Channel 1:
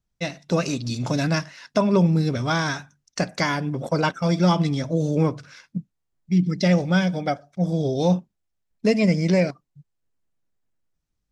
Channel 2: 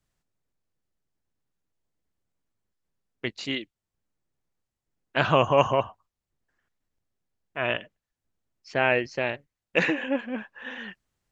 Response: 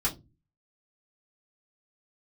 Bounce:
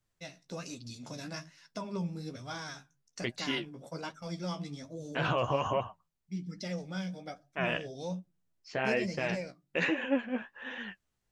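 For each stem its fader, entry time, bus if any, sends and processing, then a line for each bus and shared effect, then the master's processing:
-15.5 dB, 0.00 s, send -22.5 dB, high shelf 4400 Hz +9.5 dB
+0.5 dB, 0.00 s, no send, limiter -15.5 dBFS, peak gain reduction 10 dB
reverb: on, RT60 0.25 s, pre-delay 3 ms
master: flange 1.2 Hz, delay 7.7 ms, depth 9.7 ms, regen +33%

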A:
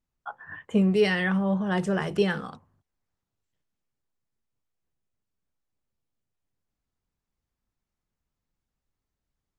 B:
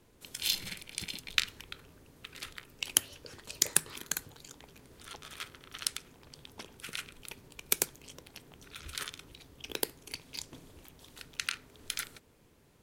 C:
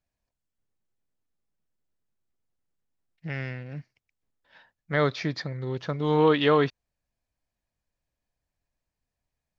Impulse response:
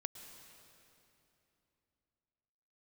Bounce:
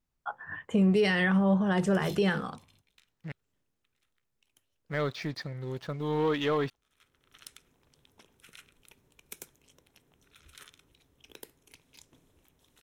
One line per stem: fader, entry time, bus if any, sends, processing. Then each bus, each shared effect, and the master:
+1.0 dB, 0.00 s, no send, dry
-12.0 dB, 1.60 s, no send, notch 4600 Hz, Q 6.2; soft clip -18.5 dBFS, distortion -6 dB; auto duck -22 dB, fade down 1.35 s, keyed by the third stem
-9.0 dB, 0.00 s, muted 3.32–4.66, no send, power-law curve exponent 0.7; crossover distortion -37.5 dBFS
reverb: off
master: limiter -17 dBFS, peak gain reduction 6.5 dB

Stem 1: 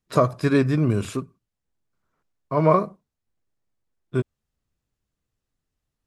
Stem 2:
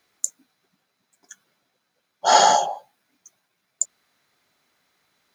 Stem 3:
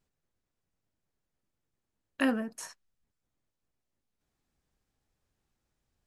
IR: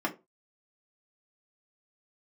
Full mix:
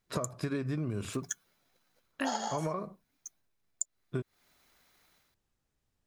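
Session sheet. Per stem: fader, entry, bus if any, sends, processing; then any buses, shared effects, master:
-4.5 dB, 0.00 s, no send, compressor, threshold -19 dBFS, peak gain reduction 8 dB
-11.0 dB, 0.00 s, no send, transient shaper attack +10 dB, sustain -3 dB; high shelf 9900 Hz +8 dB; AGC gain up to 10 dB
-2.5 dB, 0.00 s, no send, dry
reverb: off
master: compressor 6:1, threshold -30 dBFS, peak gain reduction 10.5 dB

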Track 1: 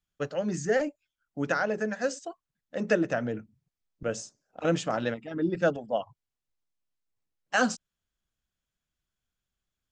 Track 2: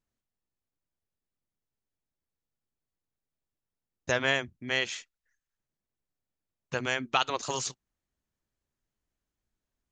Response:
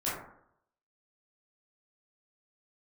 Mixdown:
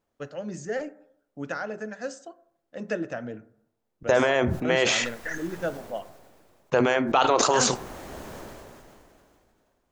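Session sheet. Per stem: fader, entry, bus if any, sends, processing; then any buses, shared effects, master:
-5.5 dB, 0.00 s, send -21 dB, dry
0.0 dB, 0.00 s, send -18 dB, bell 590 Hz +15 dB 2.7 oct; limiter -11 dBFS, peak gain reduction 8.5 dB; sustainer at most 23 dB/s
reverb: on, RT60 0.70 s, pre-delay 12 ms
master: dry

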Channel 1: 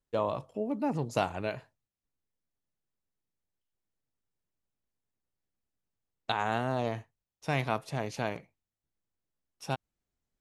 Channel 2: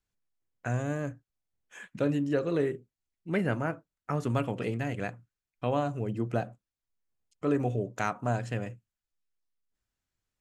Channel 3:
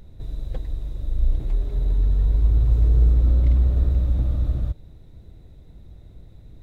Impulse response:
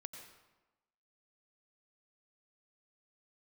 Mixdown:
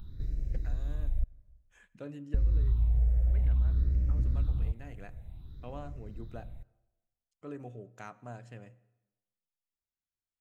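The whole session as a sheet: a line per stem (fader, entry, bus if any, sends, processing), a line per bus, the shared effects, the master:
off
-16.5 dB, 0.00 s, send -10.5 dB, dry
-2.0 dB, 0.00 s, muted 1.24–2.34, send -14.5 dB, phaser stages 6, 0.55 Hz, lowest notch 290–1000 Hz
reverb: on, RT60 1.1 s, pre-delay 84 ms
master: compressor 2:1, threshold -30 dBFS, peak gain reduction 9.5 dB

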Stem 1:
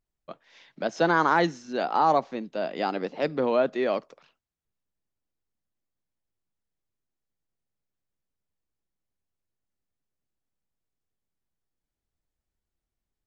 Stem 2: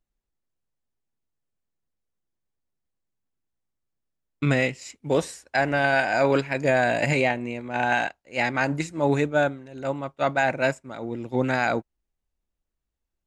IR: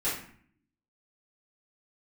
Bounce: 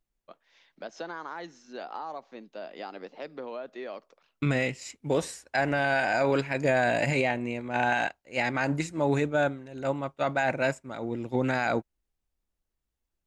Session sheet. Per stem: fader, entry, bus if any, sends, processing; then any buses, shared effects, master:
-7.5 dB, 0.00 s, no send, HPF 330 Hz 6 dB/oct; compressor 5:1, threshold -27 dBFS, peak gain reduction 9.5 dB
-1.0 dB, 0.00 s, no send, dry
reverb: off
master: limiter -15 dBFS, peak gain reduction 5.5 dB

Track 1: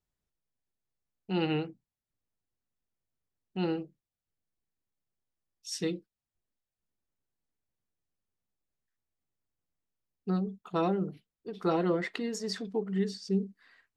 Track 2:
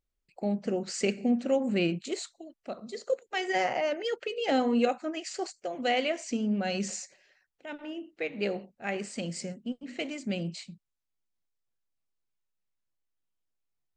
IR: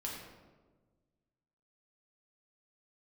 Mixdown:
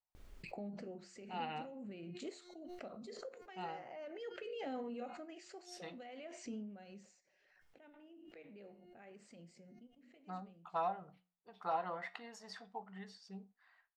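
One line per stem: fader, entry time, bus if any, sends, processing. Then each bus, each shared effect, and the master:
-2.5 dB, 0.00 s, no send, resonant low shelf 540 Hz -12.5 dB, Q 3
6.51 s -6.5 dB -> 6.74 s -17.5 dB, 0.15 s, no send, de-hum 356.9 Hz, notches 18; limiter -24 dBFS, peak gain reduction 10 dB; backwards sustainer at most 28 dB/s; auto duck -9 dB, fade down 0.85 s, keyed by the first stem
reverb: off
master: high shelf 3300 Hz -12 dB; flange 0.3 Hz, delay 9.3 ms, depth 5.9 ms, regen -78%

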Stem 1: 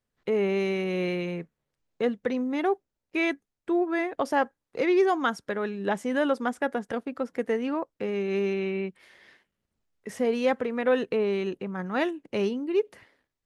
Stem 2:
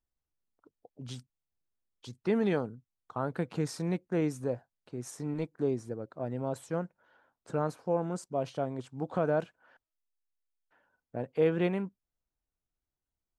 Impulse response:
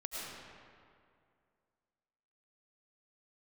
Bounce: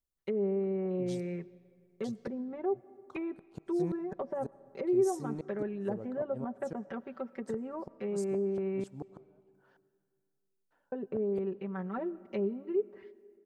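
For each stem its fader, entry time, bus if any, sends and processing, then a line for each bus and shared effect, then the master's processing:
-10.0 dB, 0.00 s, muted 8.84–10.92, send -20 dB, gate -55 dBFS, range -17 dB; treble ducked by the level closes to 590 Hz, closed at -23.5 dBFS; comb 5.2 ms, depth 89%
-4.5 dB, 0.00 s, send -19 dB, high shelf 3200 Hz +5 dB; flipped gate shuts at -23 dBFS, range -39 dB; bell 2300 Hz -8 dB 1.3 oct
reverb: on, RT60 2.3 s, pre-delay 65 ms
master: dry

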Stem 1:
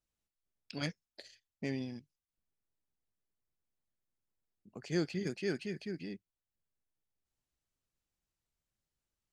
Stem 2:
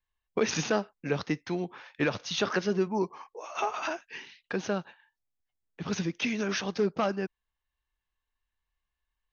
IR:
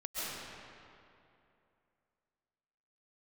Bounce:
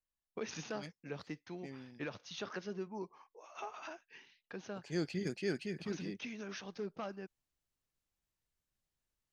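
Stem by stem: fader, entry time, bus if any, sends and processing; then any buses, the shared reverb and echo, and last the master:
4.65 s -12 dB -> 5.07 s -1 dB, 0.00 s, no send, dry
-14.5 dB, 0.00 s, no send, dry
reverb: off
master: dry

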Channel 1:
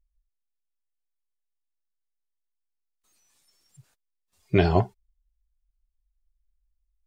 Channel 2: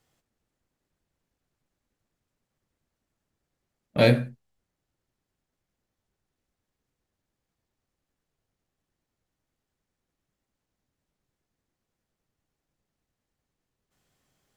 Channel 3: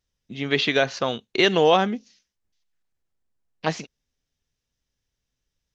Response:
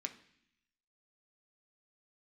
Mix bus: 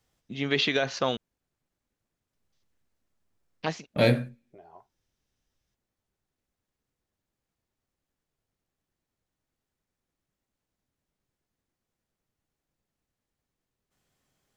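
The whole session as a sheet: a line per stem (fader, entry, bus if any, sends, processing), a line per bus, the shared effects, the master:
-13.5 dB, 0.00 s, no send, compressor 10:1, threshold -25 dBFS, peak gain reduction 12 dB; LFO band-pass saw up 0.72 Hz 290–4400 Hz
-3.0 dB, 0.00 s, send -22 dB, dry
-1.5 dB, 0.00 s, muted 1.17–2.33, no send, limiter -11.5 dBFS, peak gain reduction 6 dB; auto duck -15 dB, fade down 0.30 s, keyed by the second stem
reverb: on, RT60 0.65 s, pre-delay 3 ms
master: dry

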